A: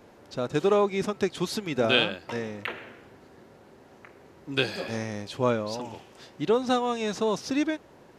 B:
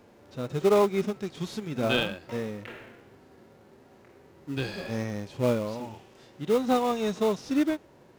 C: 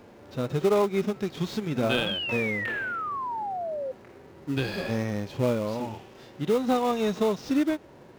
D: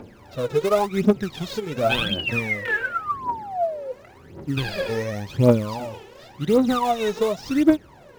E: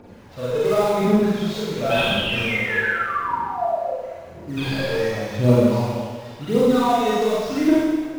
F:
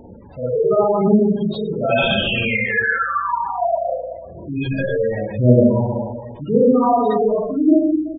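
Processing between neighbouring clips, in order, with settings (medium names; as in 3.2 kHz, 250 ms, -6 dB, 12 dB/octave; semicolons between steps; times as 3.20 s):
harmonic-percussive split percussive -14 dB; in parallel at -10.5 dB: sample-rate reducer 1.7 kHz, jitter 20%
median filter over 5 samples; compression 2:1, threshold -30 dBFS, peak gain reduction 7 dB; painted sound fall, 2.06–3.92 s, 510–3400 Hz -37 dBFS; trim +5.5 dB
phaser 0.91 Hz, delay 2.4 ms, feedback 74%; trim +1 dB
Schroeder reverb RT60 1.5 s, combs from 33 ms, DRR -8 dB; trim -6 dB
resampled via 11.025 kHz; spectral gate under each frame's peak -15 dB strong; hum 60 Hz, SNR 34 dB; trim +3.5 dB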